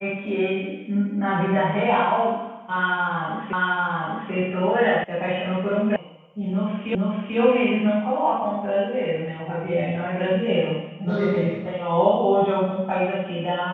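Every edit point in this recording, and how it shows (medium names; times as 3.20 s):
3.53 s: repeat of the last 0.79 s
5.04 s: sound stops dead
5.96 s: sound stops dead
6.95 s: repeat of the last 0.44 s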